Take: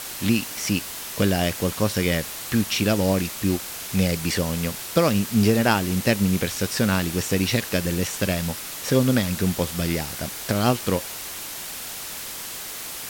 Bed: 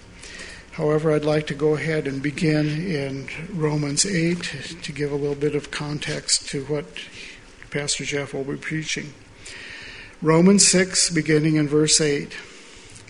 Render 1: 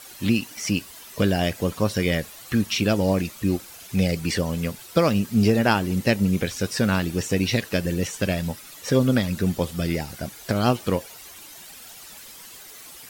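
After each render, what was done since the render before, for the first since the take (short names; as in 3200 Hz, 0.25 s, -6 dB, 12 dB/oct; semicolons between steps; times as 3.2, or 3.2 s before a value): denoiser 12 dB, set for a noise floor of -34 dBFS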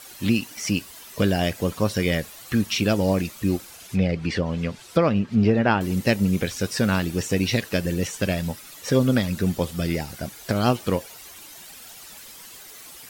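3.67–5.81 treble ducked by the level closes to 2600 Hz, closed at -19 dBFS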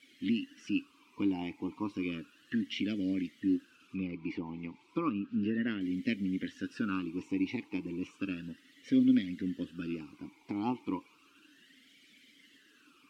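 vowel sweep i-u 0.33 Hz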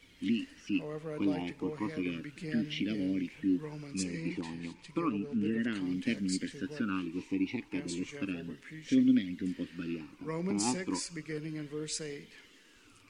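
add bed -20.5 dB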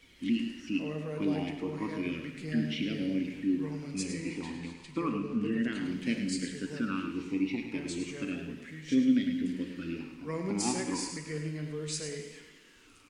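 on a send: echo 0.105 s -8.5 dB; on the sum: non-linear reverb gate 0.46 s falling, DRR 6 dB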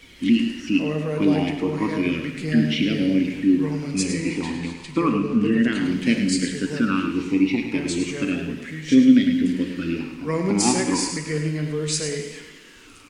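gain +11.5 dB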